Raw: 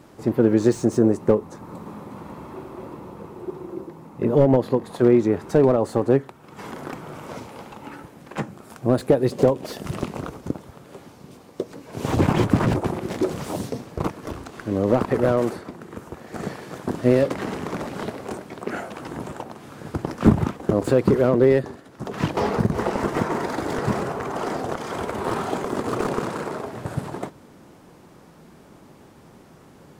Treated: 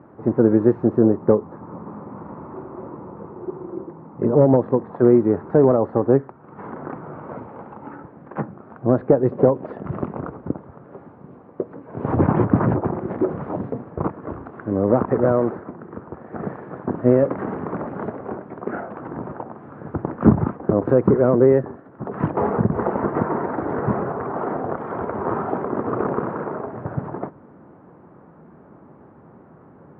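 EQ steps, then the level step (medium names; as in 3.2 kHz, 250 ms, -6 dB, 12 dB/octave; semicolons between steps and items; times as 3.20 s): high-pass 77 Hz; low-pass 1.5 kHz 24 dB/octave; +2.0 dB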